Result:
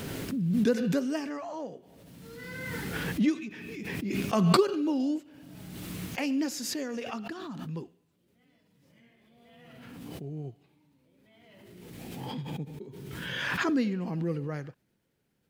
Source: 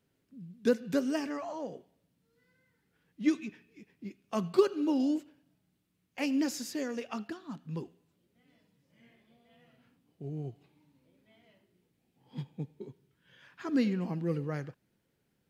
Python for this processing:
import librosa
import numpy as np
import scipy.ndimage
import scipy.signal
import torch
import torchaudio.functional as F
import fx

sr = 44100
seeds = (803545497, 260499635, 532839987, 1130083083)

y = fx.pre_swell(x, sr, db_per_s=25.0)